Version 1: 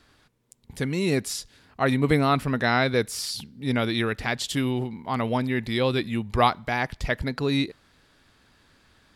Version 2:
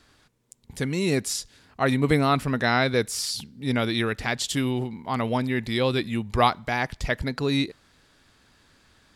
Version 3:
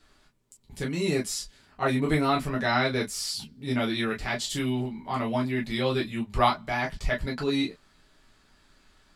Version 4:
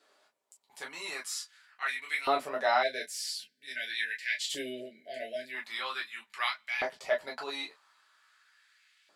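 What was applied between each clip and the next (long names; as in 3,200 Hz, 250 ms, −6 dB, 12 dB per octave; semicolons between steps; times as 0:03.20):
parametric band 7,100 Hz +4 dB 1 octave
convolution reverb, pre-delay 5 ms, DRR −3 dB; level −7.5 dB
time-frequency box erased 0:02.83–0:05.54, 690–1,500 Hz; auto-filter high-pass saw up 0.44 Hz 480–2,400 Hz; level −5 dB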